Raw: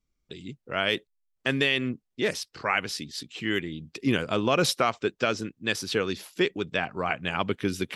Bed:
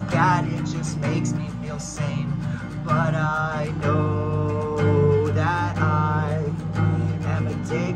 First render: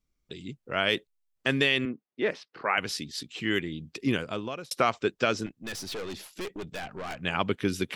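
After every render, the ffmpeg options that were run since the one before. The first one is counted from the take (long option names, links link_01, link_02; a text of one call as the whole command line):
ffmpeg -i in.wav -filter_complex "[0:a]asettb=1/sr,asplit=3[link_01][link_02][link_03];[link_01]atrim=end=1.854[link_04];[link_02]atrim=start=1.85:end=2.78,asetpts=PTS-STARTPTS,afade=type=in:duration=0.004:curve=qsin,afade=type=out:start_time=0.926:duration=0.004:curve=qsin,highpass=230,lowpass=2300[link_05];[link_03]atrim=start=2.776[link_06];[link_04][link_05]acrossfade=duration=0.004:curve1=hsin:curve2=qsin[link_07];[link_07][link_06]acrossfade=duration=0.004:curve1=qsin:curve2=hsin,asettb=1/sr,asplit=3[link_08][link_09][link_10];[link_08]atrim=end=5.464[link_11];[link_09]atrim=start=5.46:end=7.21,asetpts=PTS-STARTPTS,afade=type=in:duration=0.004:curve=qsin,afade=type=out:start_time=1.746:duration=0.004:curve=qsin,aeval=exprs='(tanh(44.7*val(0)+0.35)-tanh(0.35))/44.7':channel_layout=same[link_12];[link_10]atrim=start=7.206[link_13];[link_11][link_12]acrossfade=duration=0.004:curve1=hsin:curve2=qsin[link_14];[link_14][link_13]acrossfade=duration=0.004:curve1=qsin:curve2=hsin,asplit=2[link_15][link_16];[link_15]atrim=end=4.71,asetpts=PTS-STARTPTS,afade=type=out:start_time=3.93:duration=0.78[link_17];[link_16]atrim=start=4.71,asetpts=PTS-STARTPTS,afade=type=in:duration=0.004:curve=hsin[link_18];[link_17][link_18]concat=n=2:v=0:a=1" out.wav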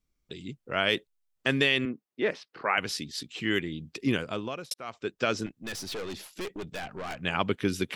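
ffmpeg -i in.wav -filter_complex "[0:a]asplit=2[link_01][link_02];[link_01]atrim=end=4.74,asetpts=PTS-STARTPTS,afade=type=out:start_time=4.736:duration=0.004:curve=hsin[link_03];[link_02]atrim=start=4.74,asetpts=PTS-STARTPTS,afade=type=in:duration=0.64[link_04];[link_03][link_04]concat=n=2:v=0:a=1" out.wav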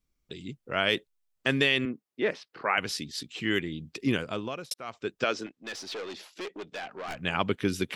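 ffmpeg -i in.wav -filter_complex "[0:a]asettb=1/sr,asplit=3[link_01][link_02][link_03];[link_01]atrim=end=5.244[link_04];[link_02]atrim=start=5.24:end=7.08,asetpts=PTS-STARTPTS,afade=type=in:duration=0.004:curve=qsin,afade=type=out:start_time=1.836:duration=0.004:curve=qsin,acrossover=split=260 7100:gain=0.141 1 0.178[link_05][link_06][link_07];[link_05][link_06][link_07]amix=inputs=3:normalize=0[link_08];[link_03]atrim=start=7.076[link_09];[link_04][link_08]acrossfade=duration=0.004:curve1=hsin:curve2=qsin[link_10];[link_10][link_09]acrossfade=duration=0.004:curve1=qsin:curve2=hsin" out.wav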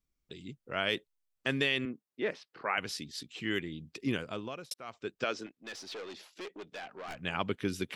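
ffmpeg -i in.wav -af "volume=-5.5dB" out.wav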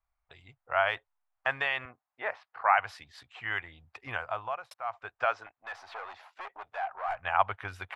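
ffmpeg -i in.wav -af "firequalizer=gain_entry='entry(100,0);entry(170,-22);entry(360,-17);entry(730,14);entry(3100,-6);entry(5500,-14)':delay=0.05:min_phase=1" out.wav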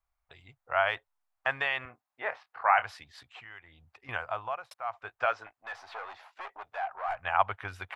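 ffmpeg -i in.wav -filter_complex "[0:a]asettb=1/sr,asplit=3[link_01][link_02][link_03];[link_01]atrim=end=1.844[link_04];[link_02]atrim=start=1.84:end=2.84,asetpts=PTS-STARTPTS,afade=type=in:duration=0.004:curve=qsin,afade=type=out:start_time=0.996:duration=0.004:curve=qsin,asplit=2[link_05][link_06];[link_06]adelay=26,volume=-11dB[link_07];[link_05][link_07]amix=inputs=2:normalize=0,atrim=end_sample=44100[link_08];[link_03]atrim=start=2.836[link_09];[link_04][link_08]acrossfade=duration=0.004:curve1=hsin:curve2=qsin[link_10];[link_10][link_09]acrossfade=duration=0.004:curve1=qsin:curve2=hsin,asettb=1/sr,asplit=3[link_11][link_12][link_13];[link_11]atrim=end=3.404[link_14];[link_12]atrim=start=3.4:end=4.09,asetpts=PTS-STARTPTS,afade=type=in:duration=0.004:curve=qsin,afade=type=out:start_time=0.686:duration=0.004:curve=qsin,acompressor=threshold=-56dB:ratio=2:attack=3.2:release=140:knee=1:detection=peak[link_15];[link_13]atrim=start=4.086[link_16];[link_14][link_15]acrossfade=duration=0.004:curve1=hsin:curve2=qsin[link_17];[link_17][link_16]acrossfade=duration=0.004:curve1=qsin:curve2=hsin,asettb=1/sr,asplit=3[link_18][link_19][link_20];[link_18]atrim=end=5.054[link_21];[link_19]atrim=start=5.05:end=6.6,asetpts=PTS-STARTPTS,afade=type=in:duration=0.004:curve=qsin,afade=type=out:start_time=1.546:duration=0.004:curve=qsin,asplit=2[link_22][link_23];[link_23]adelay=18,volume=-13dB[link_24];[link_22][link_24]amix=inputs=2:normalize=0,atrim=end_sample=68355[link_25];[link_20]atrim=start=6.596[link_26];[link_21][link_25]acrossfade=duration=0.004:curve1=hsin:curve2=qsin[link_27];[link_27][link_26]acrossfade=duration=0.004:curve1=qsin:curve2=hsin" out.wav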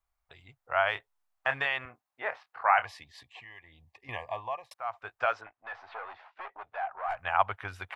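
ffmpeg -i in.wav -filter_complex "[0:a]asettb=1/sr,asplit=3[link_01][link_02][link_03];[link_01]atrim=end=0.924[link_04];[link_02]atrim=start=0.92:end=1.66,asetpts=PTS-STARTPTS,afade=type=in:duration=0.004:curve=qsin,afade=type=out:start_time=0.736:duration=0.004:curve=qsin,asplit=2[link_05][link_06];[link_06]adelay=29,volume=-8dB[link_07];[link_05][link_07]amix=inputs=2:normalize=0,atrim=end_sample=32634[link_08];[link_03]atrim=start=1.656[link_09];[link_04][link_08]acrossfade=duration=0.004:curve1=hsin:curve2=qsin[link_10];[link_10][link_09]acrossfade=duration=0.004:curve1=qsin:curve2=hsin,asettb=1/sr,asplit=3[link_11][link_12][link_13];[link_11]atrim=end=2.854[link_14];[link_12]atrim=start=2.85:end=4.73,asetpts=PTS-STARTPTS,afade=type=in:duration=0.004:curve=qsin,afade=type=out:start_time=1.876:duration=0.004:curve=qsin,asuperstop=centerf=1400:order=20:qfactor=3.1[link_15];[link_13]atrim=start=4.726[link_16];[link_14][link_15]acrossfade=duration=0.004:curve1=hsin:curve2=qsin[link_17];[link_17][link_16]acrossfade=duration=0.004:curve1=qsin:curve2=hsin,asettb=1/sr,asplit=3[link_18][link_19][link_20];[link_18]atrim=end=5.414[link_21];[link_19]atrim=start=5.41:end=7.09,asetpts=PTS-STARTPTS,afade=type=in:duration=0.004:curve=qsin,afade=type=out:start_time=1.676:duration=0.004:curve=qsin,lowpass=2800[link_22];[link_20]atrim=start=7.086[link_23];[link_21][link_22]acrossfade=duration=0.004:curve1=hsin:curve2=qsin[link_24];[link_24][link_23]acrossfade=duration=0.004:curve1=qsin:curve2=hsin" out.wav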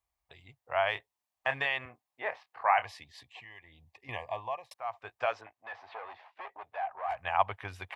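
ffmpeg -i in.wav -af "highpass=50,equalizer=frequency=1400:width_type=o:width=0.32:gain=-10.5" out.wav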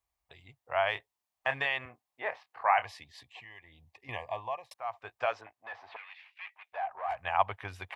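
ffmpeg -i in.wav -filter_complex "[0:a]asettb=1/sr,asplit=3[link_01][link_02][link_03];[link_01]atrim=end=5.964[link_04];[link_02]atrim=start=5.96:end=6.73,asetpts=PTS-STARTPTS,afade=type=in:duration=0.004:curve=qsin,afade=type=out:start_time=0.766:duration=0.004:curve=qsin,highpass=frequency=2400:width_type=q:width=3.1[link_05];[link_03]atrim=start=6.726[link_06];[link_04][link_05]acrossfade=duration=0.004:curve1=hsin:curve2=qsin[link_07];[link_07][link_06]acrossfade=duration=0.004:curve1=qsin:curve2=hsin" out.wav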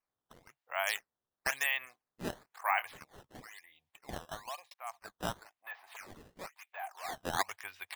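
ffmpeg -i in.wav -af "bandpass=frequency=2600:width_type=q:width=0.72:csg=0,acrusher=samples=11:mix=1:aa=0.000001:lfo=1:lforange=17.6:lforate=1" out.wav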